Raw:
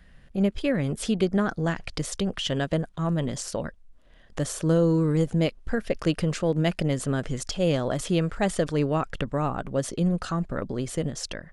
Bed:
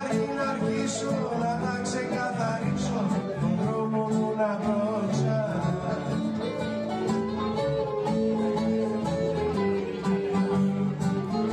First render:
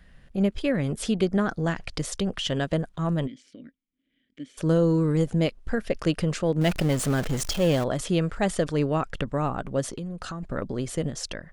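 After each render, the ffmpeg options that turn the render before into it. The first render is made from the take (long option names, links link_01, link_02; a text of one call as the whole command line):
ffmpeg -i in.wav -filter_complex "[0:a]asplit=3[link_01][link_02][link_03];[link_01]afade=type=out:start_time=3.26:duration=0.02[link_04];[link_02]asplit=3[link_05][link_06][link_07];[link_05]bandpass=frequency=270:width_type=q:width=8,volume=0dB[link_08];[link_06]bandpass=frequency=2290:width_type=q:width=8,volume=-6dB[link_09];[link_07]bandpass=frequency=3010:width_type=q:width=8,volume=-9dB[link_10];[link_08][link_09][link_10]amix=inputs=3:normalize=0,afade=type=in:start_time=3.26:duration=0.02,afade=type=out:start_time=4.57:duration=0.02[link_11];[link_03]afade=type=in:start_time=4.57:duration=0.02[link_12];[link_04][link_11][link_12]amix=inputs=3:normalize=0,asettb=1/sr,asplit=3[link_13][link_14][link_15];[link_13]atrim=end=6.614[link_16];[link_14]atrim=start=6.61:end=7.84,asetpts=PTS-STARTPTS,afade=type=in:duration=0.004:curve=qsin,afade=type=out:start_time=1.226:duration=0.004:curve=qsin,aeval=exprs='val(0)+0.5*0.0355*sgn(val(0))':channel_layout=same[link_17];[link_15]atrim=start=7.836[link_18];[link_16][link_17]acrossfade=duration=0.004:curve1=hsin:curve2=qsin[link_19];[link_19][link_18]acrossfade=duration=0.004:curve1=qsin:curve2=hsin,asettb=1/sr,asplit=3[link_20][link_21][link_22];[link_20]atrim=end=9.844[link_23];[link_21]atrim=start=9.84:end=10.43,asetpts=PTS-STARTPTS,afade=type=in:duration=0.004:curve=qsin,afade=type=out:start_time=0.586:duration=0.004:curve=qsin,acompressor=threshold=-30dB:ratio=10:attack=3.2:release=140:knee=1:detection=peak[link_24];[link_22]atrim=start=10.426[link_25];[link_23][link_24]acrossfade=duration=0.004:curve1=hsin:curve2=qsin[link_26];[link_26][link_25]acrossfade=duration=0.004:curve1=qsin:curve2=hsin" out.wav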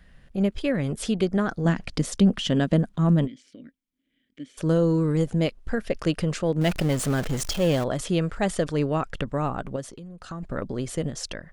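ffmpeg -i in.wav -filter_complex "[0:a]asettb=1/sr,asplit=3[link_01][link_02][link_03];[link_01]atrim=end=1.654[link_04];[link_02]atrim=start=1.65:end=3.25,asetpts=PTS-STARTPTS,afade=type=in:duration=0.004:curve=qsin,afade=type=out:start_time=1.596:duration=0.004:curve=qsin,equalizer=frequency=220:width=1.5:gain=12[link_05];[link_03]atrim=start=3.246[link_06];[link_04][link_05]acrossfade=duration=0.004:curve1=hsin:curve2=qsin[link_07];[link_07][link_06]acrossfade=duration=0.004:curve1=qsin:curve2=hsin,asplit=3[link_08][link_09][link_10];[link_08]atrim=end=9.762[link_11];[link_09]atrim=start=9.758:end=10.312,asetpts=PTS-STARTPTS,volume=-7dB[link_12];[link_10]atrim=start=10.308[link_13];[link_11][link_12]acrossfade=duration=0.004:curve1=hsin:curve2=hsin[link_14];[link_14][link_13]acrossfade=duration=0.004:curve1=hsin:curve2=hsin" out.wav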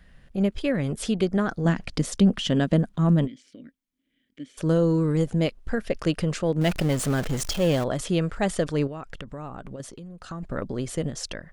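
ffmpeg -i in.wav -filter_complex "[0:a]asettb=1/sr,asplit=3[link_01][link_02][link_03];[link_01]atrim=end=8.874[link_04];[link_02]atrim=start=8.87:end=9.8,asetpts=PTS-STARTPTS,afade=type=in:duration=0.004:curve=qsin,afade=type=out:start_time=0.926:duration=0.004:curve=qsin,acompressor=threshold=-34dB:ratio=4:attack=3.2:release=140:knee=1:detection=peak[link_05];[link_03]atrim=start=9.796[link_06];[link_04][link_05]acrossfade=duration=0.004:curve1=hsin:curve2=qsin[link_07];[link_07][link_06]acrossfade=duration=0.004:curve1=qsin:curve2=hsin" out.wav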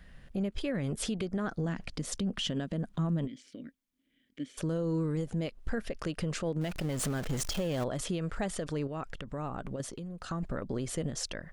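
ffmpeg -i in.wav -af "acompressor=threshold=-22dB:ratio=6,alimiter=limit=-24dB:level=0:latency=1:release=186" out.wav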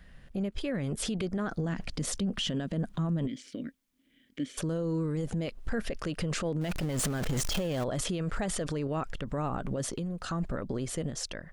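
ffmpeg -i in.wav -af "dynaudnorm=framelen=110:gausssize=21:maxgain=7dB,alimiter=limit=-24dB:level=0:latency=1:release=17" out.wav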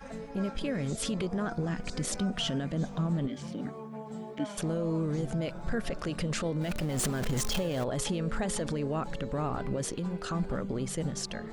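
ffmpeg -i in.wav -i bed.wav -filter_complex "[1:a]volume=-15dB[link_01];[0:a][link_01]amix=inputs=2:normalize=0" out.wav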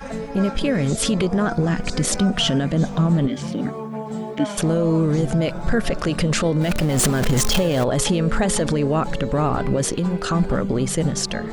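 ffmpeg -i in.wav -af "volume=12dB" out.wav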